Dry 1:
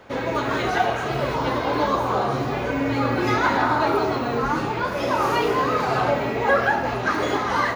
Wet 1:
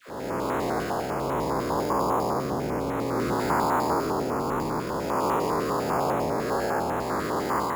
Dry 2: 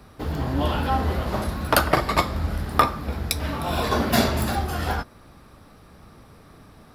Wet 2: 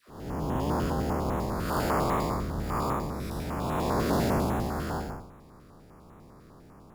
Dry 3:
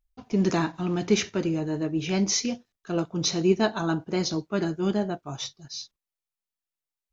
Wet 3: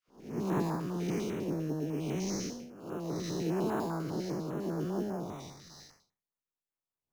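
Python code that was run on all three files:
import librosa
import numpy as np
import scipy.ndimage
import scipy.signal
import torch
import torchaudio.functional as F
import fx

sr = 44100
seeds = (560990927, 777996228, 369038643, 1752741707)

p1 = fx.spec_blur(x, sr, span_ms=262.0)
p2 = fx.graphic_eq_15(p1, sr, hz=(160, 400, 1000), db=(7, 5, 7))
p3 = fx.hpss(p2, sr, part='harmonic', gain_db=-13)
p4 = fx.dispersion(p3, sr, late='lows', ms=85.0, hz=790.0)
p5 = fx.sample_hold(p4, sr, seeds[0], rate_hz=5900.0, jitter_pct=0)
p6 = p4 + F.gain(torch.from_numpy(p5), -4.0).numpy()
p7 = fx.filter_held_notch(p6, sr, hz=10.0, low_hz=860.0, high_hz=4800.0)
y = F.gain(torch.from_numpy(p7), -3.0).numpy()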